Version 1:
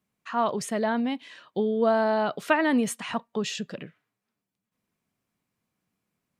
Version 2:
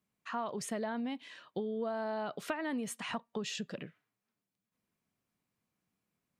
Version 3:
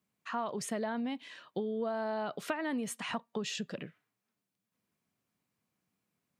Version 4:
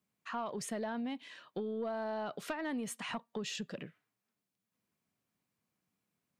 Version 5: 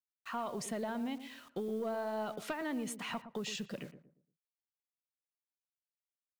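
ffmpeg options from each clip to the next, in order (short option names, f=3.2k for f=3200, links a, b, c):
-af "acompressor=threshold=-29dB:ratio=6,volume=-4.5dB"
-af "highpass=72,volume=1.5dB"
-af "asoftclip=type=tanh:threshold=-25.5dB,volume=-2dB"
-filter_complex "[0:a]bandreject=f=1.7k:w=21,acrusher=bits=9:mix=0:aa=0.000001,asplit=2[a][b];[b]adelay=115,lowpass=f=820:p=1,volume=-10dB,asplit=2[c][d];[d]adelay=115,lowpass=f=820:p=1,volume=0.36,asplit=2[e][f];[f]adelay=115,lowpass=f=820:p=1,volume=0.36,asplit=2[g][h];[h]adelay=115,lowpass=f=820:p=1,volume=0.36[i];[a][c][e][g][i]amix=inputs=5:normalize=0"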